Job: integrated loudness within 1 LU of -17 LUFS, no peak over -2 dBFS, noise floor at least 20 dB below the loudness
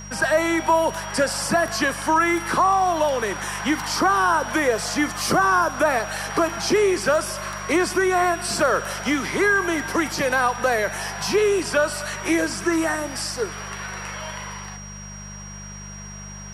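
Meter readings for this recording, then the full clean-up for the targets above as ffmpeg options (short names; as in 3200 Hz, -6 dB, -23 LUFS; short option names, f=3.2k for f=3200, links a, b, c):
hum 50 Hz; harmonics up to 200 Hz; hum level -37 dBFS; steady tone 5700 Hz; tone level -39 dBFS; loudness -21.5 LUFS; peak -8.5 dBFS; loudness target -17.0 LUFS
-> -af "bandreject=f=50:t=h:w=4,bandreject=f=100:t=h:w=4,bandreject=f=150:t=h:w=4,bandreject=f=200:t=h:w=4"
-af "bandreject=f=5.7k:w=30"
-af "volume=4.5dB"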